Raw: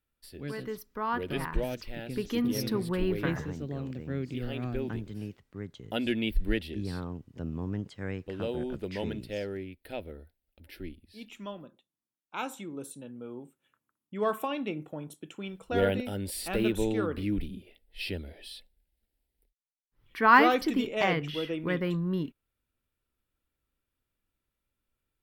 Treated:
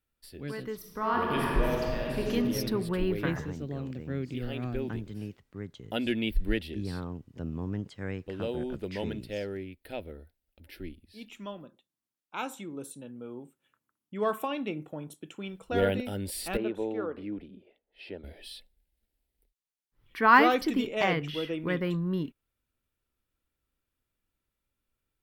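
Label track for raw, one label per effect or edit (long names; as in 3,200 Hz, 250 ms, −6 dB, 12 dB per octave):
0.750000	2.300000	thrown reverb, RT60 2.4 s, DRR −2.5 dB
16.570000	18.240000	resonant band-pass 670 Hz, Q 0.87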